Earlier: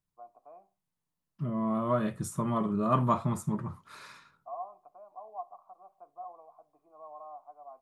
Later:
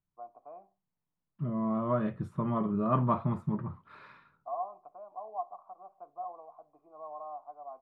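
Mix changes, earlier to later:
first voice +5.5 dB; master: add distance through air 440 m

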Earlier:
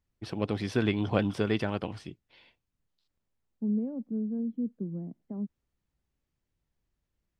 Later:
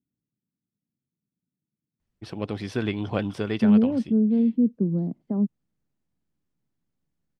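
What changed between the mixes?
first voice: entry +2.00 s; second voice +11.5 dB

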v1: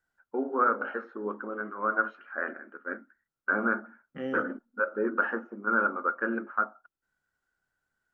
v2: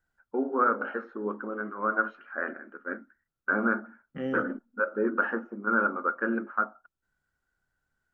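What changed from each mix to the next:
master: add bass shelf 160 Hz +10 dB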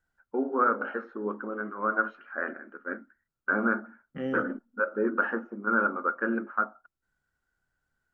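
no change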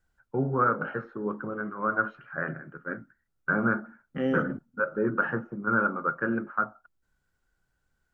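first voice: remove brick-wall FIR high-pass 200 Hz; second voice +5.0 dB

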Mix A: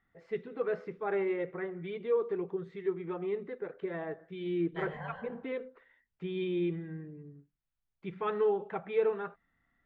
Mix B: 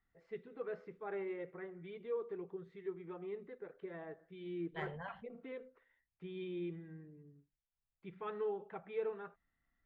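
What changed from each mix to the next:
first voice -10.0 dB; reverb: off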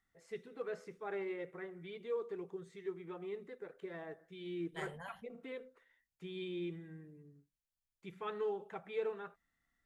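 second voice -4.0 dB; master: remove distance through air 340 m

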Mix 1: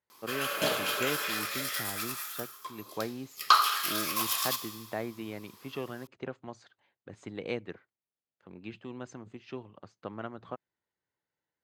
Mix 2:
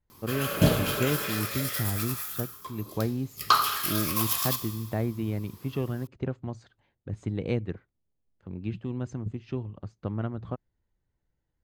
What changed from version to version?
second voice +8.5 dB; background: add bass shelf 230 Hz +10.5 dB; master: remove frequency weighting A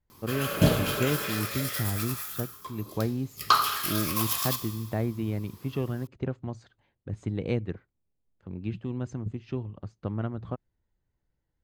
background: add peaking EQ 15 kHz -2.5 dB 0.74 oct

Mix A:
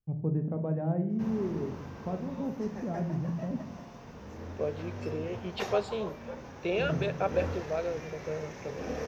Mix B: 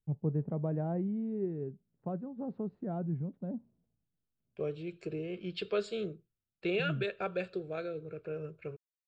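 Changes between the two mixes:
second voice: add high-order bell 760 Hz -8.5 dB 1.3 oct; background: muted; reverb: off

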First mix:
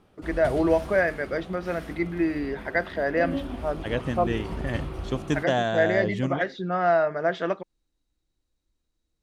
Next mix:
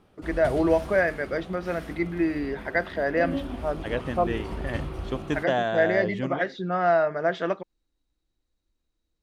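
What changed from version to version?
second voice: add tone controls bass -6 dB, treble -9 dB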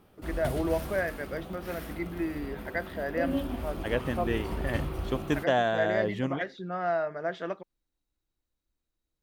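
first voice -7.5 dB; master: remove low-pass 8.5 kHz 12 dB/octave

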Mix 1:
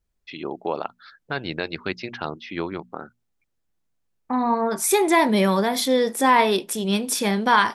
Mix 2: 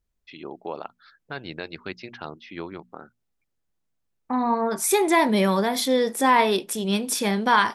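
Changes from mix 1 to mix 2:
first voice -6.5 dB; reverb: off

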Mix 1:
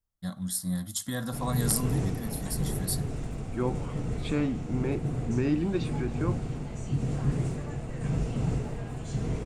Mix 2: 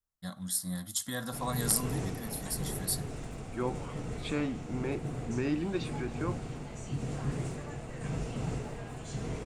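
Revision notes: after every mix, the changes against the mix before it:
master: add bass shelf 340 Hz -8 dB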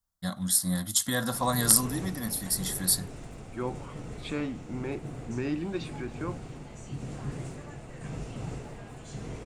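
first voice +9.0 dB; reverb: off

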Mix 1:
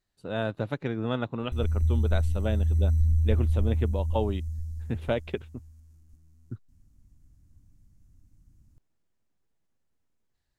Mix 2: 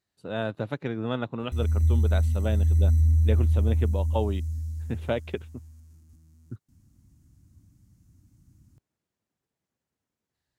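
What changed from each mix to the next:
background +6.5 dB; master: add high-pass 84 Hz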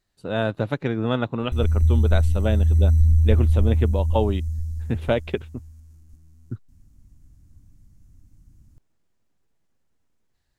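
speech +6.0 dB; master: remove high-pass 84 Hz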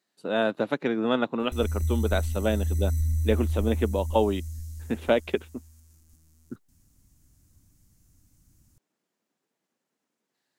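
speech: add high-pass 200 Hz 24 dB/octave; background: add tilt EQ +2.5 dB/octave

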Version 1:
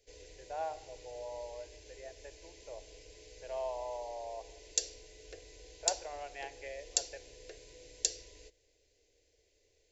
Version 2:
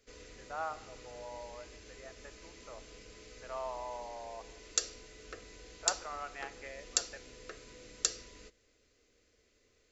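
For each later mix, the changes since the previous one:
speech -4.5 dB; master: remove static phaser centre 520 Hz, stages 4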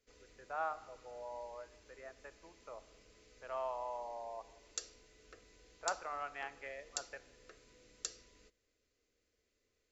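background -11.0 dB

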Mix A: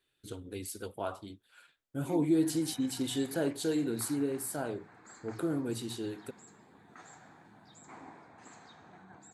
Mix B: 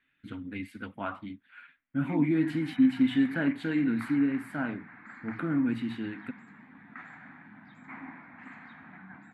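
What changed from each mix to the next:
master: add FFT filter 110 Hz 0 dB, 260 Hz +12 dB, 390 Hz -10 dB, 2.1 kHz +14 dB, 5.9 kHz -22 dB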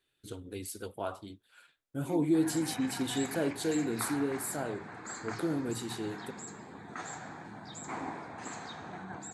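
background +11.5 dB; master: remove FFT filter 110 Hz 0 dB, 260 Hz +12 dB, 390 Hz -10 dB, 2.1 kHz +14 dB, 5.9 kHz -22 dB

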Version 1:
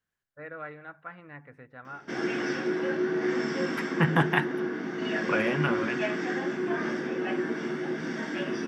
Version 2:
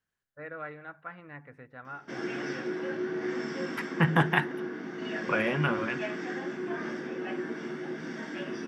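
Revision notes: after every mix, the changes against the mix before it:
background -5.0 dB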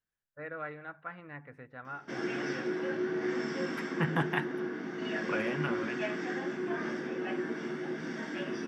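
second voice -7.0 dB

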